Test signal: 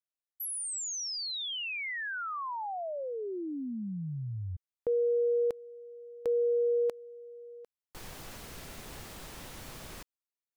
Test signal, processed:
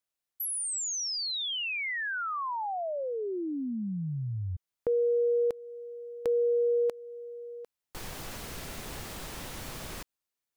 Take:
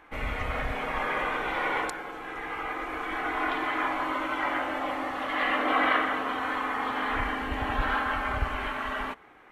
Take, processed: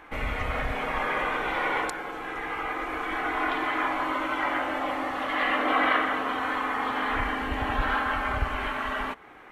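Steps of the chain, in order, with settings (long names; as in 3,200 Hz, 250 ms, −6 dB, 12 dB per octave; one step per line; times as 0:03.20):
in parallel at −1 dB: downward compressor, threshold −41 dBFS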